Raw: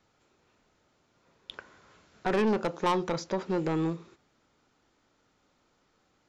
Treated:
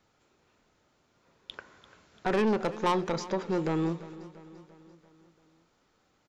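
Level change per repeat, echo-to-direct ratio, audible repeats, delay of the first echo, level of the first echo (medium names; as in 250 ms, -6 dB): -5.0 dB, -15.5 dB, 4, 342 ms, -17.0 dB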